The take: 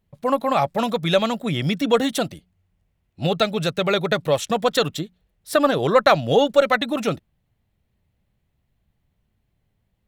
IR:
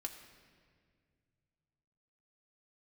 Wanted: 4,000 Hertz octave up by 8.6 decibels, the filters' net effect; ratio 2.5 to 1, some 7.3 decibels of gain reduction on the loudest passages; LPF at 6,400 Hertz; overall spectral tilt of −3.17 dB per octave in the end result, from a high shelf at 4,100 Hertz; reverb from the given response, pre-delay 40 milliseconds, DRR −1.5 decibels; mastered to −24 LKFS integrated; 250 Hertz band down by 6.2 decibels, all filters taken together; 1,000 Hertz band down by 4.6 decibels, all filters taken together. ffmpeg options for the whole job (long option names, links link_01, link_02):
-filter_complex "[0:a]lowpass=6400,equalizer=frequency=250:width_type=o:gain=-8,equalizer=frequency=1000:width_type=o:gain=-7,equalizer=frequency=4000:width_type=o:gain=6.5,highshelf=frequency=4100:gain=8.5,acompressor=threshold=-23dB:ratio=2.5,asplit=2[link_01][link_02];[1:a]atrim=start_sample=2205,adelay=40[link_03];[link_02][link_03]afir=irnorm=-1:irlink=0,volume=3.5dB[link_04];[link_01][link_04]amix=inputs=2:normalize=0,volume=-2dB"